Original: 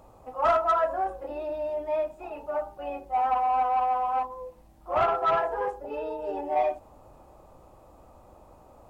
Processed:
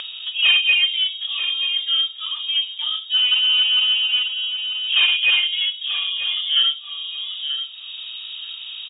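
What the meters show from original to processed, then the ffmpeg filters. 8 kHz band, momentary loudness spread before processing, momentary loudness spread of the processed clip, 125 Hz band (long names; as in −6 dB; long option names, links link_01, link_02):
can't be measured, 12 LU, 15 LU, below −15 dB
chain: -filter_complex "[0:a]asplit=2[link_01][link_02];[link_02]aecho=0:1:928:0.0794[link_03];[link_01][link_03]amix=inputs=2:normalize=0,acontrast=83,asplit=2[link_04][link_05];[link_05]aecho=0:1:936:0.251[link_06];[link_04][link_06]amix=inputs=2:normalize=0,lowpass=frequency=3200:width_type=q:width=0.5098,lowpass=frequency=3200:width_type=q:width=0.6013,lowpass=frequency=3200:width_type=q:width=0.9,lowpass=frequency=3200:width_type=q:width=2.563,afreqshift=-3800,acompressor=mode=upward:threshold=-21dB:ratio=2.5"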